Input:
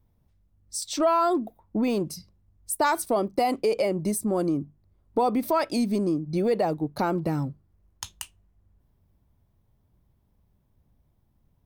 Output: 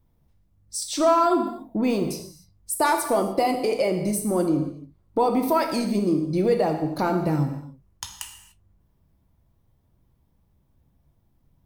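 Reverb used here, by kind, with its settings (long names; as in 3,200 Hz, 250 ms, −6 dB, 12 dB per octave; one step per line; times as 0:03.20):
reverb whose tail is shaped and stops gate 320 ms falling, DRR 3.5 dB
level +1 dB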